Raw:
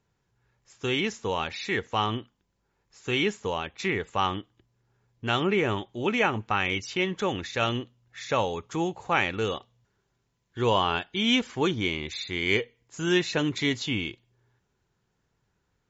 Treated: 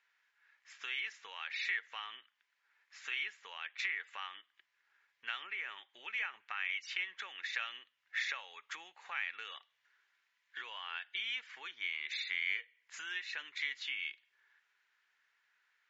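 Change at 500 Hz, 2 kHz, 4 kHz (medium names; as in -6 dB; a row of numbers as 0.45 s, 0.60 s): -35.0 dB, -7.0 dB, -11.0 dB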